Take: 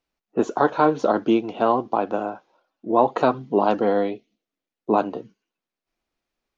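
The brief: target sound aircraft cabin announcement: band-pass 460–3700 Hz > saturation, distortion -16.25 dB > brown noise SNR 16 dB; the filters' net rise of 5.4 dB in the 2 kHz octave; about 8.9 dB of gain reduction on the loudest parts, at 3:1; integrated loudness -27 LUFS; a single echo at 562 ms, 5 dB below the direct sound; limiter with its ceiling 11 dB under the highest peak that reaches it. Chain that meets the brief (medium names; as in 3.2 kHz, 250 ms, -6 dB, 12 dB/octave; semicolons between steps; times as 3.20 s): peaking EQ 2 kHz +8.5 dB; compression 3:1, threshold -24 dBFS; peak limiter -20.5 dBFS; band-pass 460–3700 Hz; delay 562 ms -5 dB; saturation -26 dBFS; brown noise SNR 16 dB; trim +10 dB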